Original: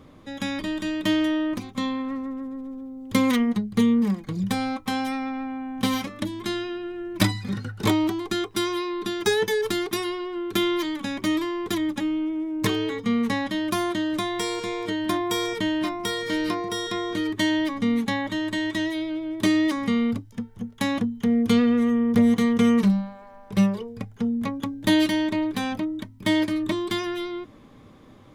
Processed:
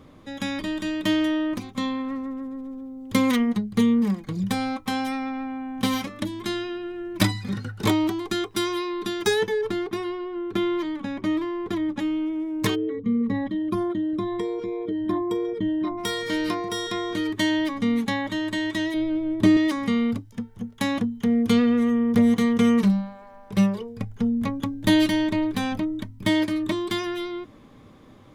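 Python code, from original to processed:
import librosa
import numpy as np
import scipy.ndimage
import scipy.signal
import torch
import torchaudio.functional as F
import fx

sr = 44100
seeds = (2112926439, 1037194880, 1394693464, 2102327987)

y = fx.lowpass(x, sr, hz=1300.0, slope=6, at=(9.47, 11.99))
y = fx.envelope_sharpen(y, sr, power=2.0, at=(12.74, 15.97), fade=0.02)
y = fx.tilt_eq(y, sr, slope=-2.5, at=(18.94, 19.57))
y = fx.low_shelf(y, sr, hz=96.0, db=11.5, at=(24.0, 26.29))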